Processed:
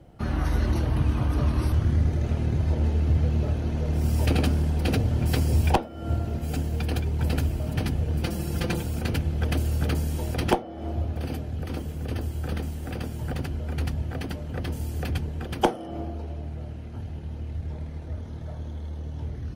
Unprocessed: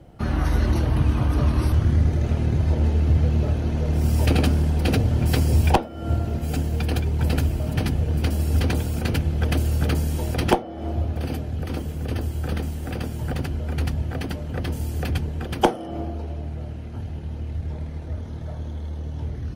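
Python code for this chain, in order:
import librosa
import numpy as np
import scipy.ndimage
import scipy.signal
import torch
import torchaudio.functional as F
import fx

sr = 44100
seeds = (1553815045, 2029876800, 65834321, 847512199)

y = fx.comb(x, sr, ms=5.8, depth=0.66, at=(8.23, 8.83))
y = F.gain(torch.from_numpy(y), -3.5).numpy()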